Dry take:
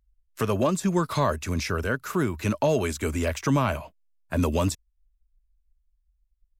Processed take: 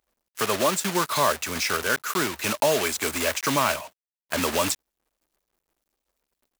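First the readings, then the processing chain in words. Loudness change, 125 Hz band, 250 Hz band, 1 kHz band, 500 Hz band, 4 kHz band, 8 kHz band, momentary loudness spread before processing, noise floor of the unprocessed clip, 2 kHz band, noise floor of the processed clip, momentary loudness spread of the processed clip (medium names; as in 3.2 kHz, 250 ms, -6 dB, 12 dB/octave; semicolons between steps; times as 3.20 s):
+2.0 dB, -10.5 dB, -4.5 dB, +4.0 dB, +0.5 dB, +10.0 dB, +9.5 dB, 5 LU, -72 dBFS, +6.5 dB, under -85 dBFS, 6 LU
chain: block-companded coder 3-bit; high-pass 830 Hz 6 dB/octave; trim +6 dB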